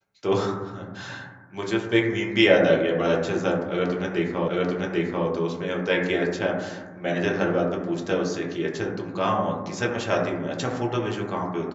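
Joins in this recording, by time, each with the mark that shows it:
0:04.48: the same again, the last 0.79 s

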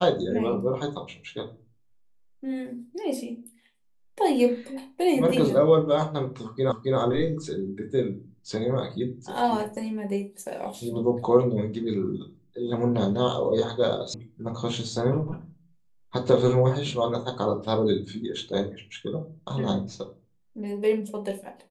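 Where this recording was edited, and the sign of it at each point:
0:06.72: the same again, the last 0.27 s
0:14.14: cut off before it has died away

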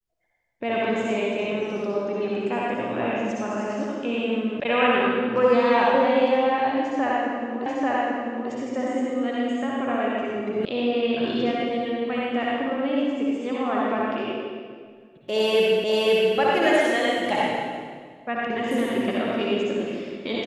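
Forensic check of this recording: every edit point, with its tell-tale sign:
0:04.60: cut off before it has died away
0:07.66: the same again, the last 0.84 s
0:10.65: cut off before it has died away
0:15.84: the same again, the last 0.53 s

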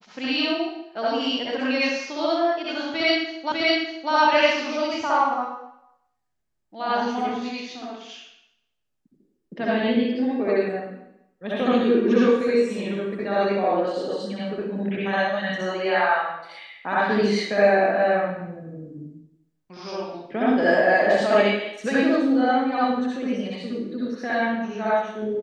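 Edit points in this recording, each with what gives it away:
0:03.52: the same again, the last 0.6 s

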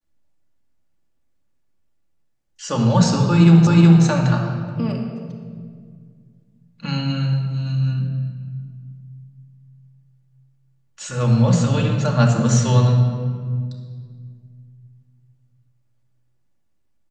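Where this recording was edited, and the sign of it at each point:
0:03.67: the same again, the last 0.37 s

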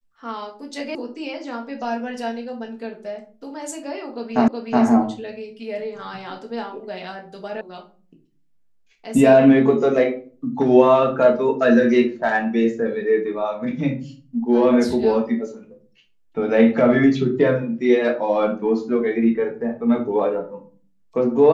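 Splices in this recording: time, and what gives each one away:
0:00.95: cut off before it has died away
0:04.48: the same again, the last 0.37 s
0:07.61: cut off before it has died away

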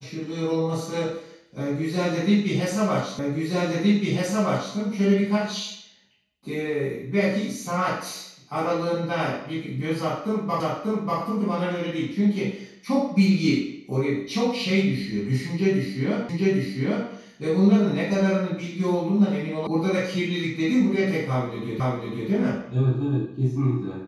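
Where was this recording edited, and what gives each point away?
0:03.19: the same again, the last 1.57 s
0:10.60: the same again, the last 0.59 s
0:16.29: the same again, the last 0.8 s
0:19.67: cut off before it has died away
0:21.80: the same again, the last 0.5 s

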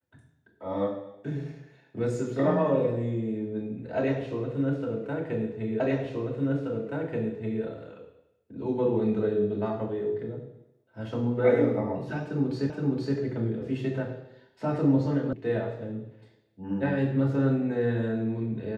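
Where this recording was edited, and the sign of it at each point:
0:05.80: the same again, the last 1.83 s
0:12.70: the same again, the last 0.47 s
0:15.33: cut off before it has died away

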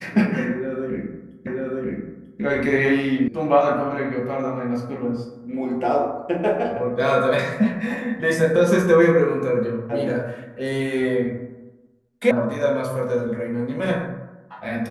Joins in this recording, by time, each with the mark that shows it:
0:01.47: the same again, the last 0.94 s
0:03.28: cut off before it has died away
0:12.31: cut off before it has died away

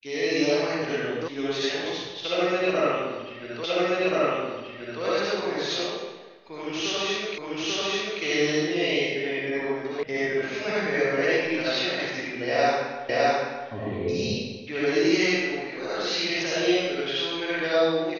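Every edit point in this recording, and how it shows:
0:01.28: cut off before it has died away
0:03.64: the same again, the last 1.38 s
0:07.38: the same again, the last 0.84 s
0:10.03: cut off before it has died away
0:13.09: the same again, the last 0.61 s

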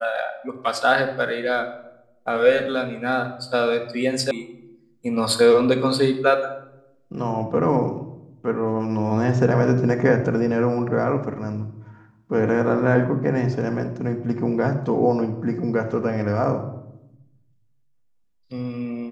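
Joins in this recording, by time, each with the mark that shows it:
0:04.31: cut off before it has died away

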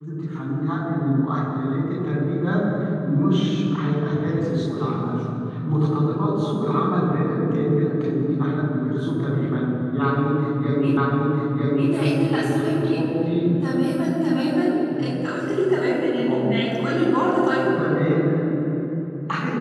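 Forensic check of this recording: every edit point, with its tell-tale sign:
0:10.97: the same again, the last 0.95 s

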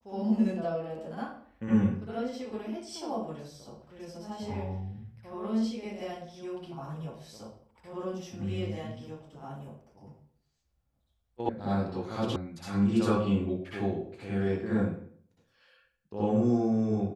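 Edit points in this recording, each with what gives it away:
0:11.49: cut off before it has died away
0:12.36: cut off before it has died away

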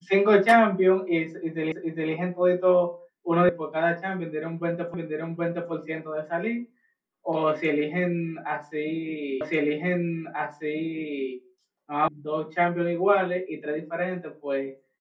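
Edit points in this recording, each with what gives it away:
0:01.72: the same again, the last 0.41 s
0:03.49: cut off before it has died away
0:04.94: the same again, the last 0.77 s
0:09.41: the same again, the last 1.89 s
0:12.08: cut off before it has died away

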